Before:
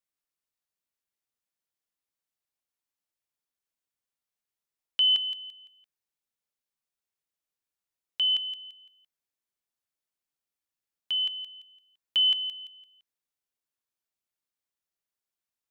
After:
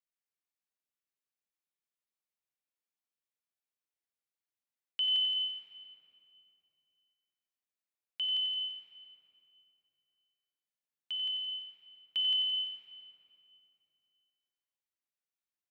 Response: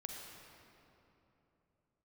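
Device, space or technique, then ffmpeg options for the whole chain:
PA in a hall: -filter_complex "[0:a]highpass=120,equalizer=f=2400:t=o:w=0.9:g=3.5,aecho=1:1:91:0.376[s0];[1:a]atrim=start_sample=2205[s1];[s0][s1]afir=irnorm=-1:irlink=0,volume=0.501"

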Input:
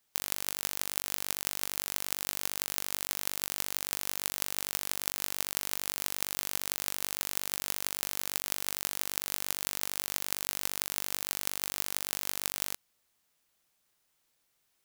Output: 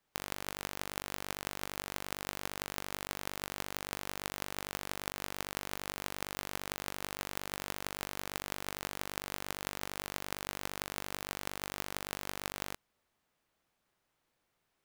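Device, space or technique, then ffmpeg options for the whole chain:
through cloth: -af "highshelf=f=3200:g=-15.5,volume=1.5"

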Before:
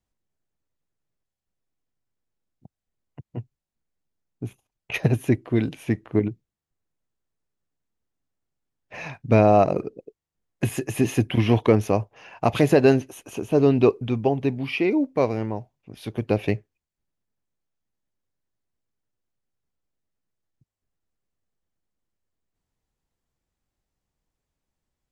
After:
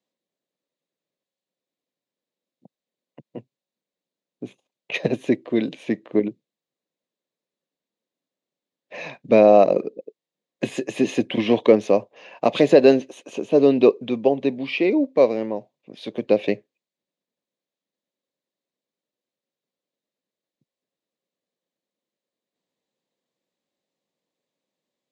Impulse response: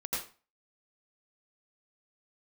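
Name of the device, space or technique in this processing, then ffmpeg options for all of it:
television speaker: -af "highpass=f=190:w=0.5412,highpass=f=190:w=1.3066,equalizer=f=540:t=q:w=4:g=8,equalizer=f=830:t=q:w=4:g=-4,equalizer=f=1400:t=q:w=4:g=-8,equalizer=f=3800:t=q:w=4:g=6,equalizer=f=5600:t=q:w=4:g=-4,lowpass=f=7300:w=0.5412,lowpass=f=7300:w=1.3066,volume=1.19"

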